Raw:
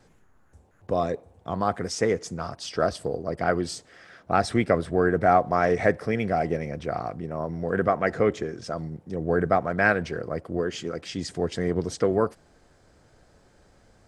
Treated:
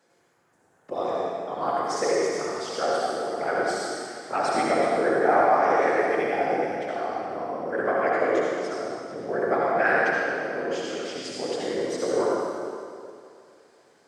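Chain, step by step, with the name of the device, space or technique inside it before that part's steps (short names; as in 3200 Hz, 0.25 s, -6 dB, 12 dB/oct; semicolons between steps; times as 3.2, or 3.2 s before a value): whispering ghost (whisperiser; HPF 340 Hz 12 dB/oct; reverb RT60 2.3 s, pre-delay 57 ms, DRR -5.5 dB); gain -4.5 dB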